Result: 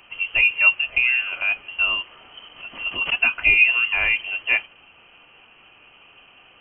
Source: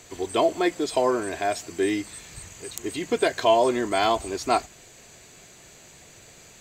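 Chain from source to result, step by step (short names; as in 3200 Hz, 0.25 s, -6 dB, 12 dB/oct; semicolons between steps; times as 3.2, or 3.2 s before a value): small resonant body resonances 350/600/1900 Hz, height 10 dB, ringing for 0.1 s; inverted band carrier 3100 Hz; 2.53–3.2 backwards sustainer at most 140 dB/s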